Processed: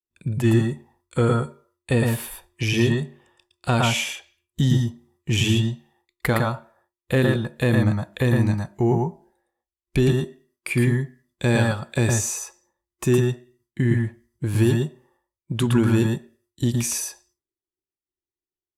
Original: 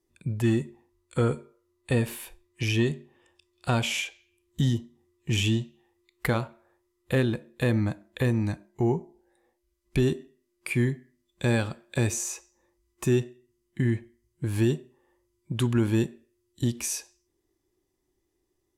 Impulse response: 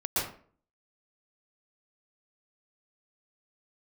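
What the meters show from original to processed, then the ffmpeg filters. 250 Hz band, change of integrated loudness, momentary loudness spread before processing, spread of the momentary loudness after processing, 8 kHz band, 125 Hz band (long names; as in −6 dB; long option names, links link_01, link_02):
+5.5 dB, +5.5 dB, 12 LU, 13 LU, +6.0 dB, +6.5 dB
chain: -filter_complex "[0:a]agate=range=-33dB:threshold=-58dB:ratio=3:detection=peak[link_01];[1:a]atrim=start_sample=2205,afade=type=out:start_time=0.16:duration=0.01,atrim=end_sample=7497[link_02];[link_01][link_02]afir=irnorm=-1:irlink=0,volume=5.5dB"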